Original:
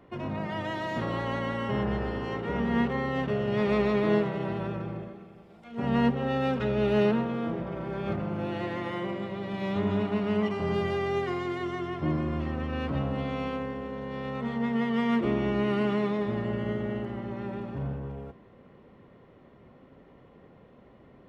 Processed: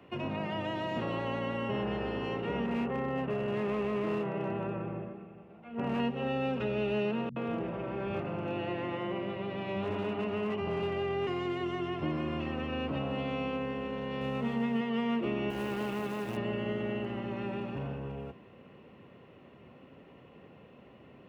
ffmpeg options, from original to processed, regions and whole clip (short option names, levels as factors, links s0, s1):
-filter_complex "[0:a]asettb=1/sr,asplit=3[s0][s1][s2];[s0]atrim=end=2.664[s3];[s1]atrim=start=2.66:end=6,asetpts=PTS-STARTPTS,afade=t=in:d=0.004:c=qsin,afade=t=out:st=3.336:d=0.004:c=qsin,lowpass=1600,bandreject=f=50:t=h:w=6,bandreject=f=100:t=h:w=6,bandreject=f=150:t=h:w=6,asoftclip=type=hard:threshold=0.0668[s4];[s2]atrim=start=5.996[s5];[s3][s4]acrossfade=d=0.004:c1=hsin:c2=qsin[s6];[s6][s5]acrossfade=d=0.004:c1=qsin:c2=hsin,asettb=1/sr,asplit=3[s7][s8][s9];[s7]atrim=end=7.294[s10];[s8]atrim=start=7.29:end=11.27,asetpts=PTS-STARTPTS,afade=t=in:d=0.004:c=qsin,afade=t=out:st=3.976:d=0.004:c=qsin,lowpass=f=2000:p=1,volume=15,asoftclip=hard,volume=0.0668,acrossover=split=170[s11][s12];[s12]adelay=70[s13];[s11][s13]amix=inputs=2:normalize=0,atrim=end_sample=175518[s14];[s9]atrim=start=11.266[s15];[s10][s14]acrossfade=d=0.004:c1=hsin:c2=qsin[s16];[s16][s15]acrossfade=d=0.004:c1=qsin:c2=hsin,asettb=1/sr,asplit=3[s17][s18][s19];[s17]atrim=end=14.214[s20];[s18]atrim=start=14.21:end=14.81,asetpts=PTS-STARTPTS,afade=t=in:d=0.004:c=qsin,afade=t=out:st=0.596:d=0.004:c=qsin,lowshelf=f=260:g=8,aeval=exprs='sgn(val(0))*max(abs(val(0))-0.00237,0)':c=same[s21];[s19]atrim=start=14.806[s22];[s20][s21]acrossfade=d=0.004:c1=hsin:c2=qsin[s23];[s23][s22]acrossfade=d=0.004:c1=qsin:c2=hsin,asettb=1/sr,asplit=3[s24][s25][s26];[s24]atrim=end=15.504[s27];[s25]atrim=start=15.5:end=16.37,asetpts=PTS-STARTPTS,afade=t=in:d=0.004:c=qsin,afade=t=out:st=0.866:d=0.004:c=qsin,aeval=exprs='max(val(0),0)':c=same,acrusher=bits=5:mode=log:mix=0:aa=0.000001[s28];[s26]atrim=start=16.366[s29];[s27][s28]acrossfade=d=0.004:c1=hsin:c2=qsin[s30];[s30][s29]acrossfade=d=0.004:c1=qsin:c2=hsin,highpass=75,equalizer=f=2700:w=5.5:g=13.5,acrossover=split=240|1000[s31][s32][s33];[s31]acompressor=threshold=0.0112:ratio=4[s34];[s32]acompressor=threshold=0.0251:ratio=4[s35];[s33]acompressor=threshold=0.00708:ratio=4[s36];[s34][s35][s36]amix=inputs=3:normalize=0"